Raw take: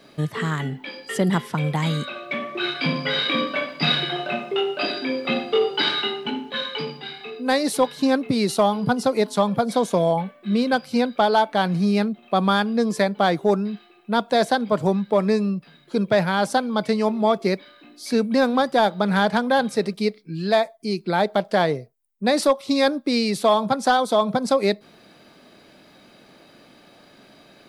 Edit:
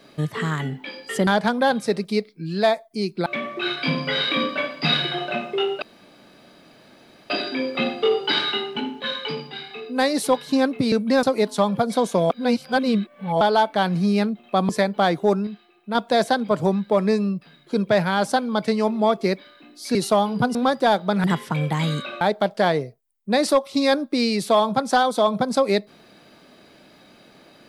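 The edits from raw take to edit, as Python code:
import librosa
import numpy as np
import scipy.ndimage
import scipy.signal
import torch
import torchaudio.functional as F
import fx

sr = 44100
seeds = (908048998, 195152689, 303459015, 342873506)

y = fx.edit(x, sr, fx.swap(start_s=1.27, length_s=0.97, other_s=19.16, other_length_s=1.99),
    fx.insert_room_tone(at_s=4.8, length_s=1.48),
    fx.swap(start_s=8.42, length_s=0.6, other_s=18.16, other_length_s=0.31),
    fx.reverse_span(start_s=10.09, length_s=1.11),
    fx.cut(start_s=12.48, length_s=0.42),
    fx.clip_gain(start_s=13.68, length_s=0.48, db=-4.5), tone=tone)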